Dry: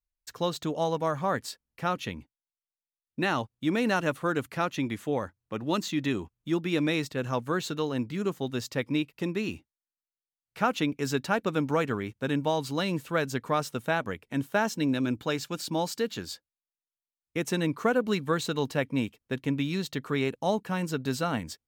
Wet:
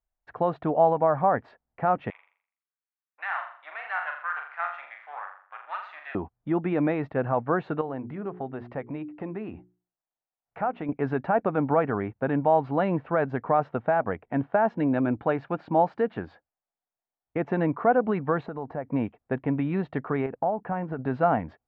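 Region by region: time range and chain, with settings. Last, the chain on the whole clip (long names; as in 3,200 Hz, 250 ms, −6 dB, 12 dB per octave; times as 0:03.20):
0:02.10–0:06.15: gain on one half-wave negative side −12 dB + high-pass filter 1,200 Hz 24 dB per octave + flutter between parallel walls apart 7.1 metres, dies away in 0.51 s
0:07.81–0:10.89: running median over 5 samples + mains-hum notches 60/120/180/240/300/360/420 Hz + downward compressor 2 to 1, threshold −40 dBFS
0:18.46–0:18.91: parametric band 3,000 Hz −10.5 dB 1 octave + downward compressor 5 to 1, threshold −36 dBFS + linearly interpolated sample-rate reduction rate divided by 2×
0:20.26–0:20.99: low-pass filter 2,600 Hz + downward compressor 10 to 1, threshold −31 dBFS
whole clip: brickwall limiter −20 dBFS; low-pass filter 1,900 Hz 24 dB per octave; parametric band 730 Hz +12.5 dB 0.62 octaves; level +3 dB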